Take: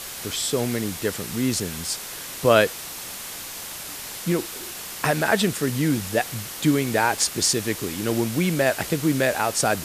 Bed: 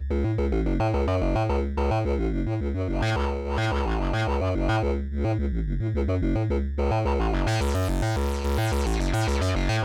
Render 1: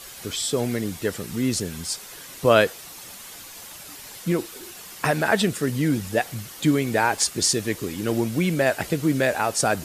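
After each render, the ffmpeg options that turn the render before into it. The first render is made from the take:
-af "afftdn=nr=8:nf=-36"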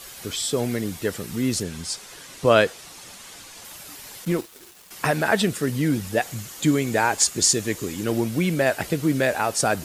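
-filter_complex "[0:a]asettb=1/sr,asplit=3[a][b][c];[a]atrim=end=1.634[d];[b]atrim=start=1.63:end=3.65,asetpts=PTS-STARTPTS,afade=t=in:d=0.004:c=qsin,afade=t=out:st=2.016:d=0.004:c=qsin,lowpass=9.7k[e];[c]atrim=start=3.646[f];[d][e]acrossfade=d=0.004:c1=hsin:c2=qsin[g];[g][f]acrossfade=d=0.004:c1=qsin:c2=hsin,asettb=1/sr,asplit=3[h][i][j];[h]atrim=end=4.254[k];[i]atrim=start=4.25:end=4.91,asetpts=PTS-STARTPTS,afade=t=in:d=0.004:c=qsin,afade=t=out:st=0.656:d=0.004:c=qsin,aeval=exprs='sgn(val(0))*max(abs(val(0))-0.00944,0)':c=same[l];[j]atrim=start=4.906[m];[k][l]acrossfade=d=0.004:c1=hsin:c2=qsin[n];[n][m]acrossfade=d=0.004:c1=qsin:c2=hsin,asettb=1/sr,asplit=3[o][p][q];[o]atrim=end=6.224[r];[p]atrim=start=6.22:end=8.04,asetpts=PTS-STARTPTS,afade=t=in:d=0.004:c=qsin,afade=t=out:st=1.816:d=0.004:c=qsin,equalizer=f=7k:w=4.2:g=6.5[s];[q]atrim=start=8.036[t];[r][s]acrossfade=d=0.004:c1=hsin:c2=qsin[u];[u][t]acrossfade=d=0.004:c1=qsin:c2=hsin"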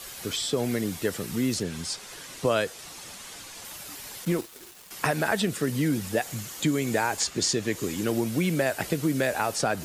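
-filter_complex "[0:a]acrossover=split=110|5200[a][b][c];[a]acompressor=threshold=-46dB:ratio=4[d];[b]acompressor=threshold=-22dB:ratio=4[e];[c]acompressor=threshold=-36dB:ratio=4[f];[d][e][f]amix=inputs=3:normalize=0"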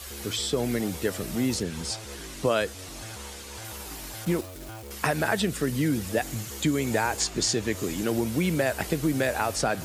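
-filter_complex "[1:a]volume=-18dB[a];[0:a][a]amix=inputs=2:normalize=0"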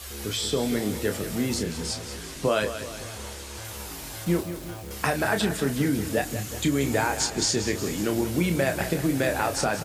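-filter_complex "[0:a]asplit=2[a][b];[b]adelay=29,volume=-7dB[c];[a][c]amix=inputs=2:normalize=0,asplit=2[d][e];[e]aecho=0:1:184|368|552|736|920|1104:0.282|0.147|0.0762|0.0396|0.0206|0.0107[f];[d][f]amix=inputs=2:normalize=0"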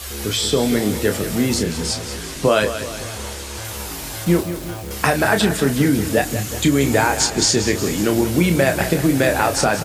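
-af "volume=8dB"

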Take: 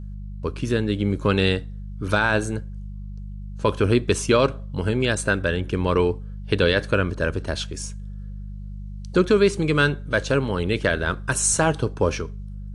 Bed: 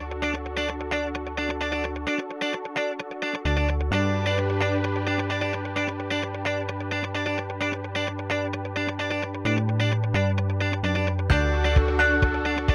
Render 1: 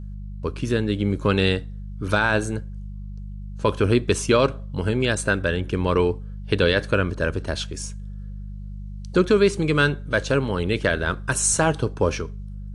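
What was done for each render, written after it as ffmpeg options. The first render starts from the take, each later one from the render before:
-af anull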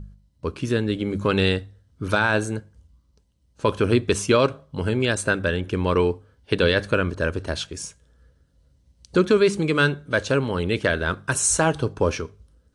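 -af "bandreject=f=50:t=h:w=4,bandreject=f=100:t=h:w=4,bandreject=f=150:t=h:w=4,bandreject=f=200:t=h:w=4"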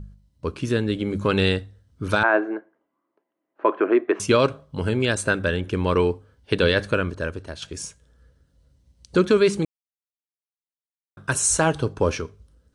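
-filter_complex "[0:a]asettb=1/sr,asplit=3[a][b][c];[a]atrim=end=2.234[d];[b]atrim=start=2.23:end=4.2,asetpts=PTS-STARTPTS,afade=t=in:d=0.004:c=qsin,afade=t=out:st=1.966:d=0.004:c=qsin,highpass=f=330:w=0.5412,highpass=f=330:w=1.3066,equalizer=f=330:t=q:w=4:g=9,equalizer=f=480:t=q:w=4:g=-5,equalizer=f=680:t=q:w=4:g=9,equalizer=f=1.1k:t=q:w=4:g=4,equalizer=f=1.9k:t=q:w=4:g=4,lowpass=f=2.1k:w=0.5412,lowpass=f=2.1k:w=1.3066[e];[c]atrim=start=4.196[f];[d][e]acrossfade=d=0.004:c1=hsin:c2=qsin[g];[g][f]acrossfade=d=0.004:c1=qsin:c2=hsin,asplit=4[h][i][j][k];[h]atrim=end=7.62,asetpts=PTS-STARTPTS,afade=t=out:st=6.83:d=0.79:silence=0.298538[l];[i]atrim=start=7.62:end=9.65,asetpts=PTS-STARTPTS,afade=t=in:d=0.004:c=hsin:silence=0.298538,afade=t=out:st=2.026:d=0.004:c=hsin[m];[j]atrim=start=9.65:end=11.17,asetpts=PTS-STARTPTS,volume=0[n];[k]atrim=start=11.17,asetpts=PTS-STARTPTS,afade=t=in:d=0.004:c=hsin[o];[l][m][n][o]concat=n=4:v=0:a=1"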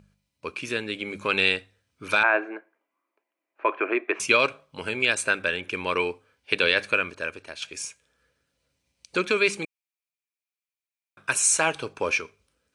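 -af "highpass=f=900:p=1,equalizer=f=2.4k:w=5.6:g=14"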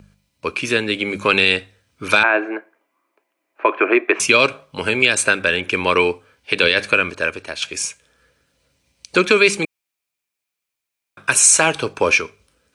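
-filter_complex "[0:a]acrossover=split=390|3000[a][b][c];[b]acompressor=threshold=-23dB:ratio=6[d];[a][d][c]amix=inputs=3:normalize=0,alimiter=level_in=10.5dB:limit=-1dB:release=50:level=0:latency=1"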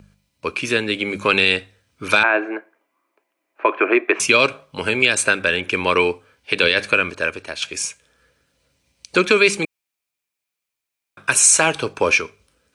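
-af "volume=-1dB"

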